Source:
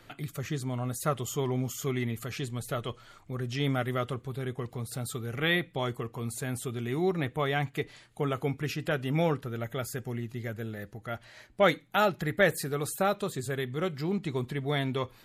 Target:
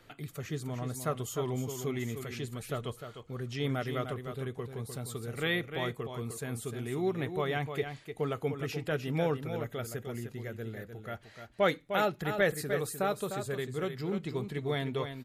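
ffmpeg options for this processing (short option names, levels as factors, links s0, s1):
-filter_complex "[0:a]equalizer=f=450:w=4.7:g=4.5,asplit=2[s0][s1];[s1]aecho=0:1:303:0.398[s2];[s0][s2]amix=inputs=2:normalize=0,volume=0.596"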